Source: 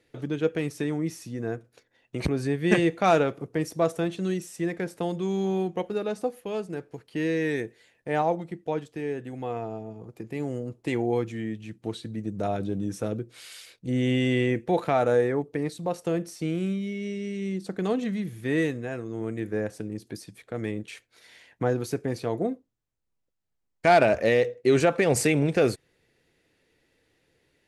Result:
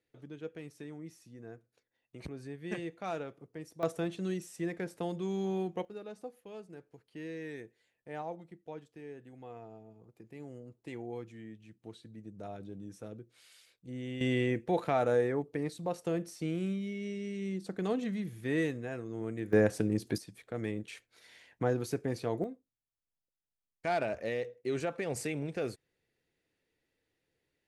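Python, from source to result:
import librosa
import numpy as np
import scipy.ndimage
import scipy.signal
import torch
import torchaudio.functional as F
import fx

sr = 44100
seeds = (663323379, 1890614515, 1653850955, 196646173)

y = fx.gain(x, sr, db=fx.steps((0.0, -17.0), (3.83, -7.0), (5.85, -15.5), (14.21, -6.0), (19.53, 4.0), (20.18, -5.0), (22.44, -13.5)))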